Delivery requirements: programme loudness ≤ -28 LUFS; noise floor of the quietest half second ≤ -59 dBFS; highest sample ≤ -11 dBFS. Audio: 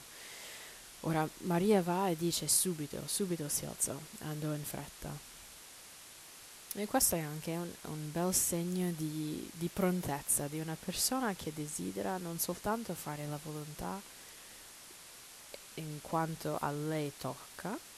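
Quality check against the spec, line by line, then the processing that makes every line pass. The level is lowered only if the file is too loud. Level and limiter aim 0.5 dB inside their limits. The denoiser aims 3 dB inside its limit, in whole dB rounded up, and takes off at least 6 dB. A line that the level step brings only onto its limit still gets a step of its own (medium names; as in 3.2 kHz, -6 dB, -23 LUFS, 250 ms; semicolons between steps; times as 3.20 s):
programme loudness -35.5 LUFS: pass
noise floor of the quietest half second -53 dBFS: fail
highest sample -15.5 dBFS: pass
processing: noise reduction 9 dB, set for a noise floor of -53 dBFS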